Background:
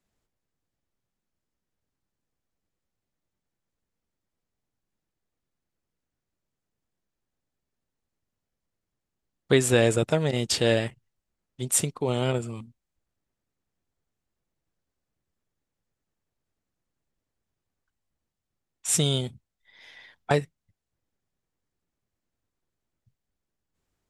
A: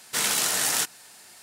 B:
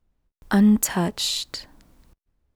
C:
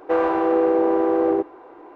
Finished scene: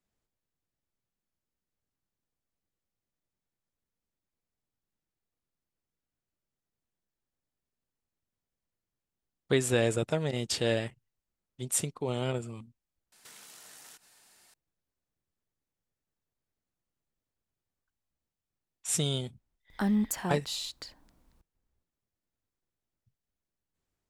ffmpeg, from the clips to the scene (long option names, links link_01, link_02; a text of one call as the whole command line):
ffmpeg -i bed.wav -i cue0.wav -i cue1.wav -filter_complex "[0:a]volume=-6dB[link_01];[1:a]acompressor=threshold=-37dB:ratio=6:attack=3.2:release=140:knee=1:detection=peak[link_02];[2:a]equalizer=frequency=820:width_type=o:width=0.77:gain=2.5[link_03];[link_02]atrim=end=1.42,asetpts=PTS-STARTPTS,volume=-12.5dB,afade=type=in:duration=0.004:curve=hsin,afade=type=out:start_time=1.416:duration=0.004:curve=hsin,adelay=13120[link_04];[link_03]atrim=end=2.55,asetpts=PTS-STARTPTS,volume=-11dB,afade=type=in:duration=0.004:curve=hsin,afade=type=out:start_time=2.546:duration=0.004:curve=hsin,adelay=19280[link_05];[link_01][link_04][link_05]amix=inputs=3:normalize=0" out.wav